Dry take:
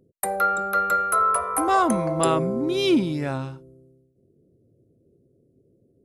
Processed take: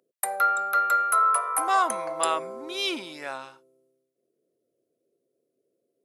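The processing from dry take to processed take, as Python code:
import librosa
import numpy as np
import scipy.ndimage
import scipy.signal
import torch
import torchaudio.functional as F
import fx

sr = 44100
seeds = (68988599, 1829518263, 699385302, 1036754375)

y = scipy.signal.sosfilt(scipy.signal.butter(2, 790.0, 'highpass', fs=sr, output='sos'), x)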